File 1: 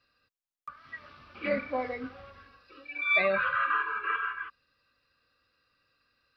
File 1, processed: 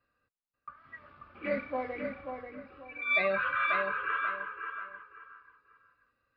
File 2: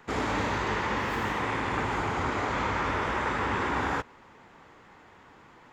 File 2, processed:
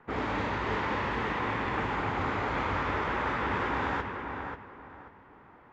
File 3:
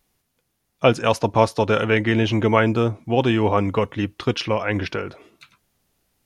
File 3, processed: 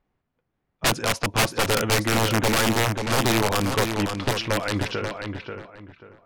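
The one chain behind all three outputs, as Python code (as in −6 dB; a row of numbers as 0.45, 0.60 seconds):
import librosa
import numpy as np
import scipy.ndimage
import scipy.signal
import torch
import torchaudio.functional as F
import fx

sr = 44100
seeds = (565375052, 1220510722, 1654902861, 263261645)

y = (np.mod(10.0 ** (11.5 / 20.0) * x + 1.0, 2.0) - 1.0) / 10.0 ** (11.5 / 20.0)
y = fx.echo_feedback(y, sr, ms=537, feedback_pct=27, wet_db=-6)
y = fx.env_lowpass(y, sr, base_hz=1700.0, full_db=-16.0)
y = F.gain(torch.from_numpy(y), -2.5).numpy()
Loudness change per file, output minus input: −2.5, −2.0, −2.5 LU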